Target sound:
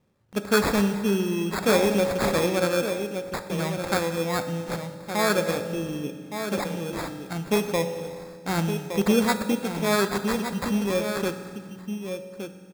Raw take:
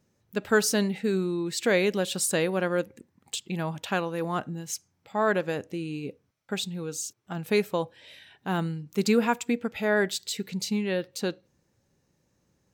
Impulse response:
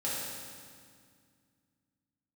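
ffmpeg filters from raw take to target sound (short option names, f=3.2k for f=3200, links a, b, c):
-filter_complex "[0:a]asplit=2[a][b];[b]adelay=1166,volume=-7dB,highshelf=f=4k:g=-26.2[c];[a][c]amix=inputs=2:normalize=0,acrusher=samples=15:mix=1:aa=0.000001,asplit=2[d][e];[1:a]atrim=start_sample=2205[f];[e][f]afir=irnorm=-1:irlink=0,volume=-11.5dB[g];[d][g]amix=inputs=2:normalize=0"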